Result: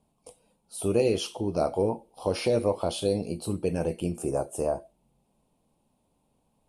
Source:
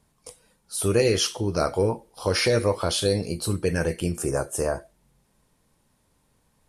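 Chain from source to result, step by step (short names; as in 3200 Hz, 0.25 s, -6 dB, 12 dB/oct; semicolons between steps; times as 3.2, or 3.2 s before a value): EQ curve 110 Hz 0 dB, 230 Hz +7 dB, 460 Hz +4 dB, 750 Hz +9 dB, 1800 Hz -12 dB, 2600 Hz +2 dB, 5900 Hz -6 dB, 9200 Hz 0 dB, 13000 Hz -5 dB; gain -7.5 dB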